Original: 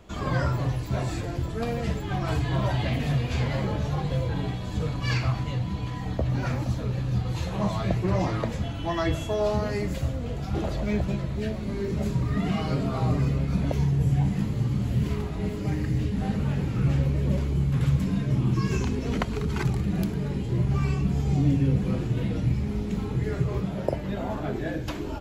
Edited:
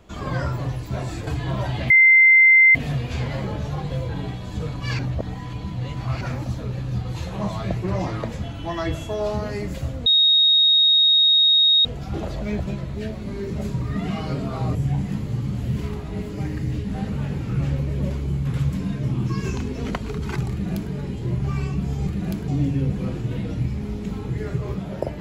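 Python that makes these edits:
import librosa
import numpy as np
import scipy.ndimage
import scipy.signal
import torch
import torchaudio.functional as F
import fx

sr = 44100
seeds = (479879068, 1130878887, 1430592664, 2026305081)

y = fx.edit(x, sr, fx.cut(start_s=1.27, length_s=1.05),
    fx.insert_tone(at_s=2.95, length_s=0.85, hz=2080.0, db=-9.0),
    fx.reverse_span(start_s=5.19, length_s=1.22),
    fx.insert_tone(at_s=10.26, length_s=1.79, hz=3750.0, db=-12.5),
    fx.cut(start_s=13.16, length_s=0.86),
    fx.duplicate(start_s=19.78, length_s=0.41, to_s=21.34), tone=tone)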